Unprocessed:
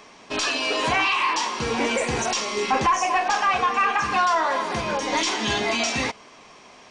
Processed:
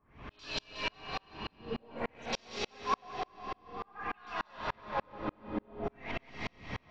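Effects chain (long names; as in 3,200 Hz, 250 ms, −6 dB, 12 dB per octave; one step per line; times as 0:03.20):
wind on the microphone 190 Hz −36 dBFS
reversed playback
downward compressor 16 to 1, threshold −35 dBFS, peak gain reduction 19.5 dB
reversed playback
auto-filter low-pass sine 0.51 Hz 290–4,400 Hz
echo with a time of its own for lows and highs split 490 Hz, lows 120 ms, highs 182 ms, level −3 dB
on a send at −3.5 dB: convolution reverb RT60 4.8 s, pre-delay 60 ms
on the sum: tremolo with a ramp in dB swelling 3.4 Hz, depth 38 dB
level +2.5 dB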